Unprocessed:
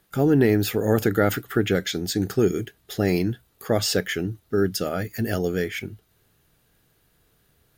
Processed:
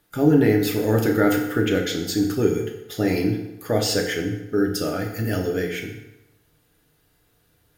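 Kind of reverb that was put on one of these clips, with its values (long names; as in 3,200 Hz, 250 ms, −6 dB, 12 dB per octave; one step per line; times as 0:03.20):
feedback delay network reverb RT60 1 s, low-frequency decay 0.8×, high-frequency decay 0.75×, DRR 0.5 dB
level −2 dB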